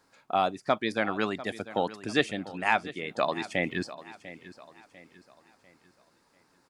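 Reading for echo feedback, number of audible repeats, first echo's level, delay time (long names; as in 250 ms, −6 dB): 40%, 3, −16.0 dB, 696 ms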